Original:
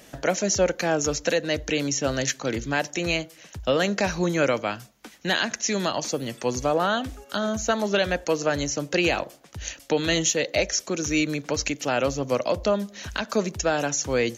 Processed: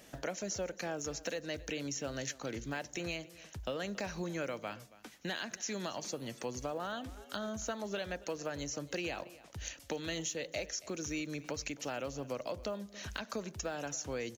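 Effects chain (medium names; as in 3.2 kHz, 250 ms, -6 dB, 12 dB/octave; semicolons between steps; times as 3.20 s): block-companded coder 7-bit; compression 3:1, threshold -30 dBFS, peak gain reduction 10.5 dB; on a send: delay 277 ms -19.5 dB; on the sum: trim -7.5 dB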